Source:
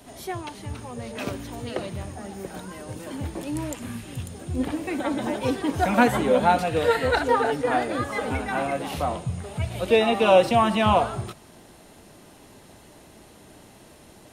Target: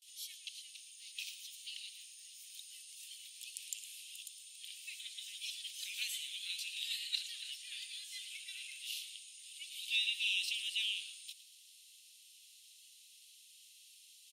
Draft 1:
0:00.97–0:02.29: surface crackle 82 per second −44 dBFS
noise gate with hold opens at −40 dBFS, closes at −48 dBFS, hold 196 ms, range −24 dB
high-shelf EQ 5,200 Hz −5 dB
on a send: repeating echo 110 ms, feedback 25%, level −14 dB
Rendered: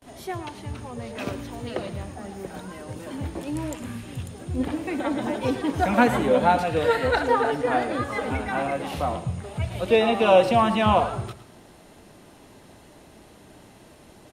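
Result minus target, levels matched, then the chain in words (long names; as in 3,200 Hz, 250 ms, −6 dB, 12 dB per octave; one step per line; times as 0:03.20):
2,000 Hz band −3.5 dB
0:00.97–0:02.29: surface crackle 82 per second −44 dBFS
noise gate with hold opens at −40 dBFS, closes at −48 dBFS, hold 196 ms, range −24 dB
Butterworth high-pass 2,800 Hz 48 dB per octave
high-shelf EQ 5,200 Hz −5 dB
on a send: repeating echo 110 ms, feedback 25%, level −14 dB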